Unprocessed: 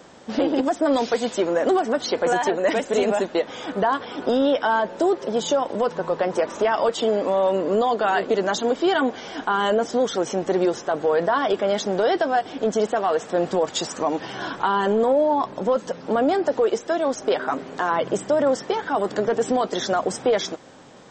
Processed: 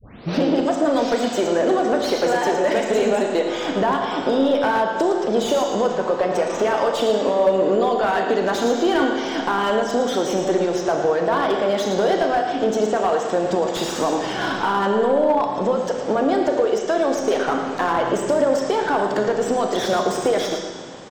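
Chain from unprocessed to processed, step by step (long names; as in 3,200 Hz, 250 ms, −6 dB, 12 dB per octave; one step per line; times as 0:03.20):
turntable start at the beginning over 0.38 s
downward compressor 3 to 1, threshold −24 dBFS, peak gain reduction 7 dB
on a send: repeating echo 112 ms, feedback 30%, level −10 dB
on the sum: four-comb reverb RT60 1.4 s, combs from 26 ms, DRR 4 dB
slew-rate limiting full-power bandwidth 94 Hz
level +5.5 dB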